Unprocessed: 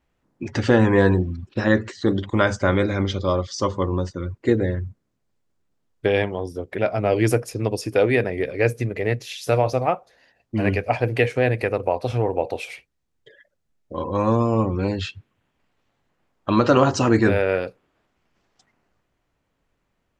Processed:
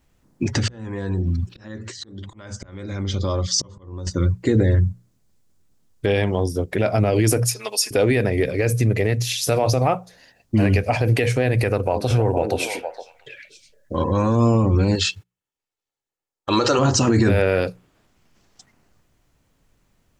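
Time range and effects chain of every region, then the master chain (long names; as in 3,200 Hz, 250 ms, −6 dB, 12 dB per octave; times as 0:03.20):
0:00.53–0:04.07: downward compressor 4 to 1, threshold −25 dBFS + volume swells 768 ms
0:07.47–0:07.91: high-pass filter 1,100 Hz + comb filter 4.7 ms, depth 85%
0:11.68–0:14.35: parametric band 1,500 Hz +7.5 dB 0.24 octaves + echo through a band-pass that steps 231 ms, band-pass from 280 Hz, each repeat 1.4 octaves, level −6.5 dB
0:14.95–0:16.79: noise gate −48 dBFS, range −26 dB + bass and treble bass −12 dB, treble +6 dB + comb filter 2.3 ms, depth 37%
whole clip: bass and treble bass +7 dB, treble +10 dB; mains-hum notches 60/120/180 Hz; brickwall limiter −13 dBFS; level +4.5 dB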